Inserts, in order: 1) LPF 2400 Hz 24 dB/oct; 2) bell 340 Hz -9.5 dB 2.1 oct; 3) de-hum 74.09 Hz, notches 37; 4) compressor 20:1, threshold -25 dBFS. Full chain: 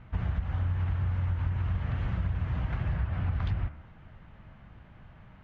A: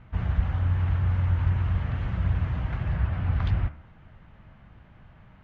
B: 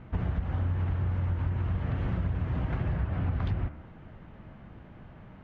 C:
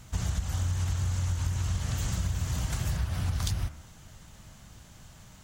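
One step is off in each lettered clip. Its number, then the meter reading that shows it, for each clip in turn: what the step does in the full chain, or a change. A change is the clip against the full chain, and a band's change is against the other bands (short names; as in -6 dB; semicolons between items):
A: 4, mean gain reduction 3.0 dB; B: 2, 500 Hz band +4.5 dB; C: 1, crest factor change +3.5 dB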